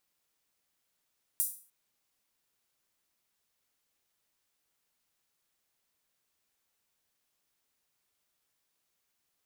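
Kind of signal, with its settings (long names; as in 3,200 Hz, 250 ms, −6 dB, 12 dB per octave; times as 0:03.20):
open synth hi-hat length 0.30 s, high-pass 9,600 Hz, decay 0.40 s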